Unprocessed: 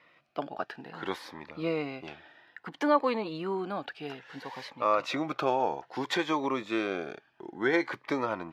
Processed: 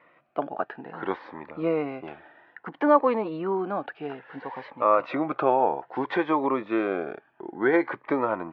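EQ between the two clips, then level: Bessel low-pass 1400 Hz, order 2; air absorption 150 m; low shelf 180 Hz -10 dB; +8.0 dB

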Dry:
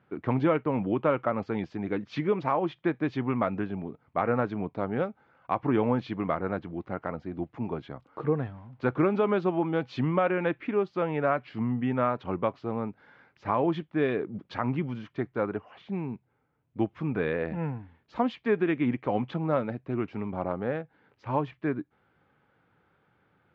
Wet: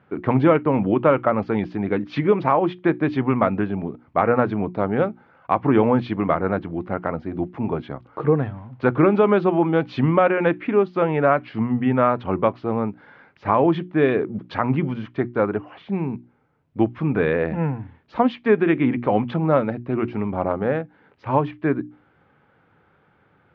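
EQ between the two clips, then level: air absorption 140 m; notches 60/120/180/240/300/360 Hz; +9.0 dB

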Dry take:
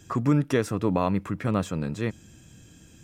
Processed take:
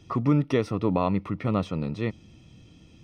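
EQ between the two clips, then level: polynomial smoothing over 15 samples; Butterworth band-stop 1600 Hz, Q 4.3; 0.0 dB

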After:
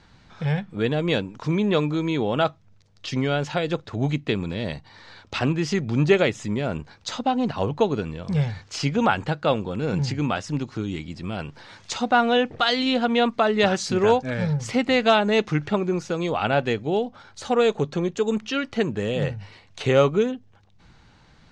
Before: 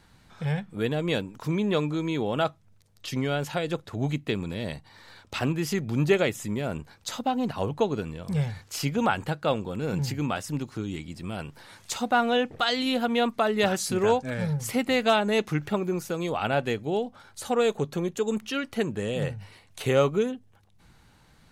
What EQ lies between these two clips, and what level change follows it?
LPF 6400 Hz 24 dB/oct; +4.0 dB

